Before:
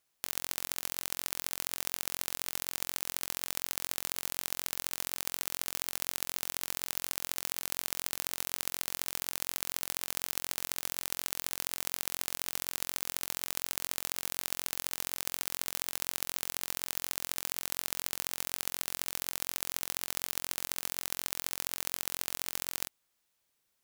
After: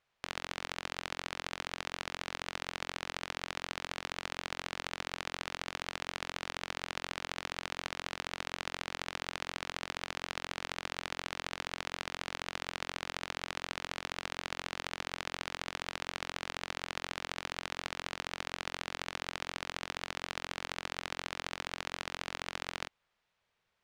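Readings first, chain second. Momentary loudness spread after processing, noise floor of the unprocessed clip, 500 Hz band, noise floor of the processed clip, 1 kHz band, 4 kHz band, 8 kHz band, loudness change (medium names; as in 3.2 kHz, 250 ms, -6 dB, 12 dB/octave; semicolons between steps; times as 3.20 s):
1 LU, -78 dBFS, +4.0 dB, -75 dBFS, +4.5 dB, -1.0 dB, -13.0 dB, -5.0 dB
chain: low-pass 2.9 kHz 12 dB/octave; peaking EQ 290 Hz -10.5 dB 0.5 oct; trim +5 dB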